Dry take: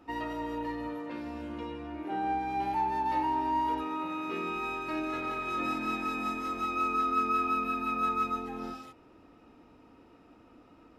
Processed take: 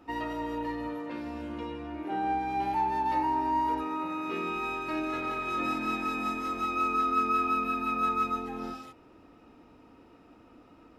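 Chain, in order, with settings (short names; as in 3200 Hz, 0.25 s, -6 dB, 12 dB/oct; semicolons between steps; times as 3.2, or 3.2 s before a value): 3.14–4.26 bell 3200 Hz -8 dB 0.35 oct; gain +1.5 dB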